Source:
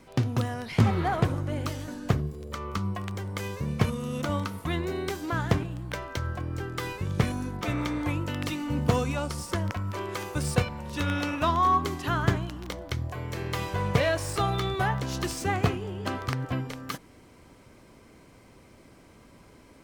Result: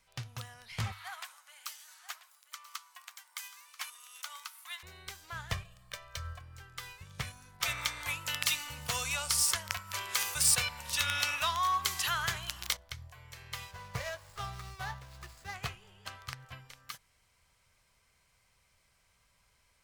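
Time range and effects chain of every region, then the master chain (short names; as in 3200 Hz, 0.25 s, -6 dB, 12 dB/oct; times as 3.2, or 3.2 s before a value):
0.92–4.83 inverse Chebyshev high-pass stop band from 320 Hz, stop band 50 dB + high shelf 6800 Hz +9 dB + echo 0.986 s -12 dB
5.52–6.39 comb 1.7 ms, depth 79% + de-hum 62.23 Hz, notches 2
7.6–12.77 tilt +2 dB/oct + fast leveller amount 50%
13.71–15.55 median filter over 15 samples + doubler 17 ms -12 dB
whole clip: passive tone stack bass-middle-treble 10-0-10; notches 50/100 Hz; upward expander 1.5:1, over -45 dBFS; gain +2.5 dB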